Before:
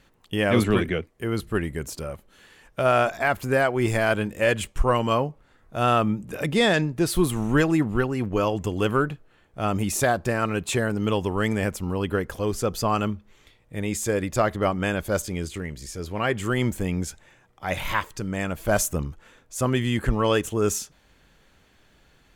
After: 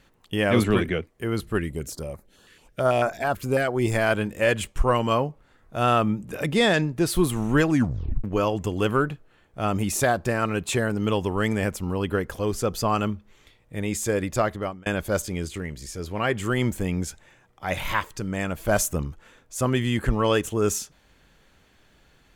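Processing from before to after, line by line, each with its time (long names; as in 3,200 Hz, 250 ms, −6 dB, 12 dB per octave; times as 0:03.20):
0:01.59–0:03.92: notch on a step sequencer 9.1 Hz 790–3,100 Hz
0:07.70: tape stop 0.54 s
0:14.20–0:14.86: fade out equal-power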